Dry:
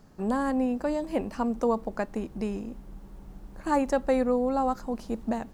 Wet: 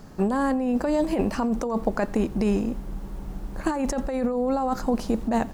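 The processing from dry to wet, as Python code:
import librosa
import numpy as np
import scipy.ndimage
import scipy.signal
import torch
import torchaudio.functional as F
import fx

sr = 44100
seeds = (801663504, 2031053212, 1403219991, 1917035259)

y = fx.over_compress(x, sr, threshold_db=-30.0, ratio=-1.0)
y = y + 10.0 ** (-22.5 / 20.0) * np.pad(y, (int(87 * sr / 1000.0), 0))[:len(y)]
y = F.gain(torch.from_numpy(y), 7.0).numpy()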